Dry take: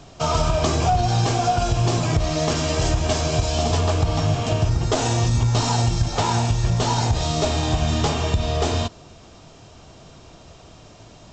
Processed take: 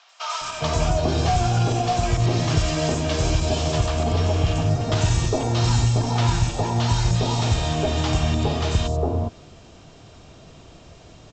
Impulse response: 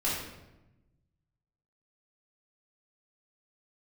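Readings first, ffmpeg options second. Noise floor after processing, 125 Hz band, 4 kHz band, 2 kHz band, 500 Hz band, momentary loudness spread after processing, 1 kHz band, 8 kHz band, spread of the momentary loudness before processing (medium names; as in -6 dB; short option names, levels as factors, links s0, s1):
-47 dBFS, 0.0 dB, -1.5 dB, -0.5 dB, -1.0 dB, 3 LU, -2.5 dB, -2.5 dB, 2 LU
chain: -filter_complex "[0:a]acrossover=split=930|5800[s0][s1][s2];[s2]adelay=90[s3];[s0]adelay=410[s4];[s4][s1][s3]amix=inputs=3:normalize=0"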